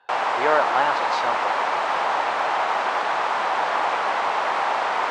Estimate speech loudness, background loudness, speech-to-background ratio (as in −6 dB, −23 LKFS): −24.5 LKFS, −22.5 LKFS, −2.0 dB